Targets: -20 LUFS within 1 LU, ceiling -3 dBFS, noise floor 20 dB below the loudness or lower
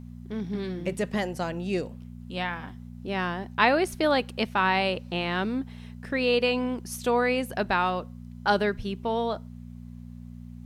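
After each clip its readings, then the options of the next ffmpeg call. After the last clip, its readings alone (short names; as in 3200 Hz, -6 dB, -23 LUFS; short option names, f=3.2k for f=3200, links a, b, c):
hum 60 Hz; harmonics up to 240 Hz; hum level -39 dBFS; loudness -27.5 LUFS; peak -6.5 dBFS; loudness target -20.0 LUFS
-> -af "bandreject=f=60:t=h:w=4,bandreject=f=120:t=h:w=4,bandreject=f=180:t=h:w=4,bandreject=f=240:t=h:w=4"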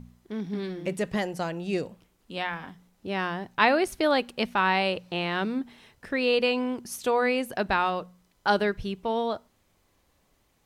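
hum none; loudness -27.5 LUFS; peak -6.5 dBFS; loudness target -20.0 LUFS
-> -af "volume=7.5dB,alimiter=limit=-3dB:level=0:latency=1"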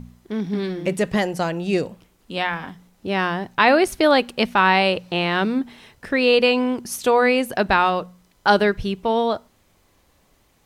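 loudness -20.0 LUFS; peak -3.0 dBFS; noise floor -61 dBFS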